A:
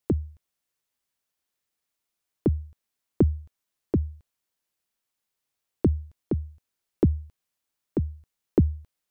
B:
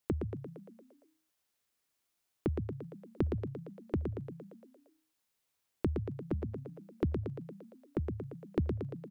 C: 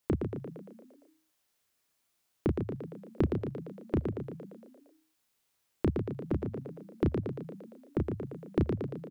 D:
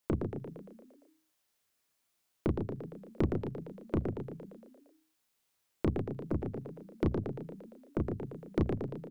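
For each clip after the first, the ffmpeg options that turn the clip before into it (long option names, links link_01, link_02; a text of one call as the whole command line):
ffmpeg -i in.wav -filter_complex "[0:a]acompressor=threshold=-38dB:ratio=2,asplit=2[link_01][link_02];[link_02]asplit=8[link_03][link_04][link_05][link_06][link_07][link_08][link_09][link_10];[link_03]adelay=115,afreqshift=30,volume=-5dB[link_11];[link_04]adelay=230,afreqshift=60,volume=-9.6dB[link_12];[link_05]adelay=345,afreqshift=90,volume=-14.2dB[link_13];[link_06]adelay=460,afreqshift=120,volume=-18.7dB[link_14];[link_07]adelay=575,afreqshift=150,volume=-23.3dB[link_15];[link_08]adelay=690,afreqshift=180,volume=-27.9dB[link_16];[link_09]adelay=805,afreqshift=210,volume=-32.5dB[link_17];[link_10]adelay=920,afreqshift=240,volume=-37.1dB[link_18];[link_11][link_12][link_13][link_14][link_15][link_16][link_17][link_18]amix=inputs=8:normalize=0[link_19];[link_01][link_19]amix=inputs=2:normalize=0" out.wav
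ffmpeg -i in.wav -filter_complex "[0:a]asplit=2[link_01][link_02];[link_02]adelay=32,volume=-4dB[link_03];[link_01][link_03]amix=inputs=2:normalize=0,volume=3dB" out.wav
ffmpeg -i in.wav -af "bandreject=frequency=60:width_type=h:width=6,bandreject=frequency=120:width_type=h:width=6,bandreject=frequency=180:width_type=h:width=6,bandreject=frequency=240:width_type=h:width=6,bandreject=frequency=300:width_type=h:width=6,bandreject=frequency=360:width_type=h:width=6,bandreject=frequency=420:width_type=h:width=6,aeval=exprs='0.2*(cos(1*acos(clip(val(0)/0.2,-1,1)))-cos(1*PI/2))+0.0141*(cos(8*acos(clip(val(0)/0.2,-1,1)))-cos(8*PI/2))':channel_layout=same,volume=-1.5dB" out.wav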